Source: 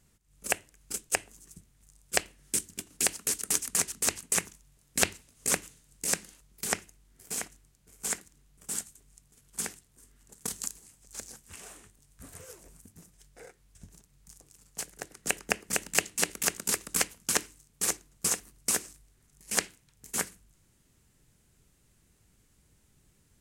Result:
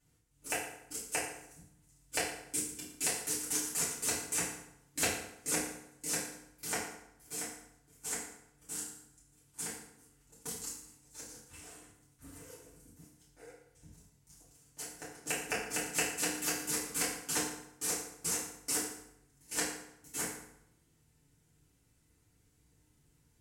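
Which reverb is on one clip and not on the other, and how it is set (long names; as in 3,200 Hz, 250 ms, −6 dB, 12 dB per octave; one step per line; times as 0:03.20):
feedback delay network reverb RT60 0.8 s, low-frequency decay 1.05×, high-frequency decay 0.75×, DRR −9.5 dB
level −14 dB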